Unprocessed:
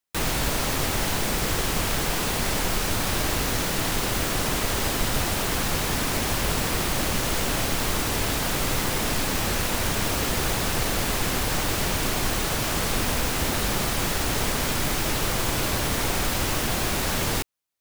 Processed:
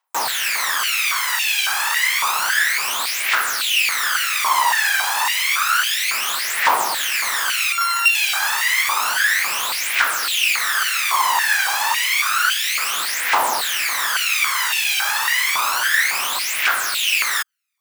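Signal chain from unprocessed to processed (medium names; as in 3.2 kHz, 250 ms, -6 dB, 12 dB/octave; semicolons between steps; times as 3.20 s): 7.72–8.15 s: sorted samples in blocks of 32 samples; phaser 0.3 Hz, delay 1.3 ms, feedback 72%; step-sequenced high-pass 3.6 Hz 930–2600 Hz; trim +2 dB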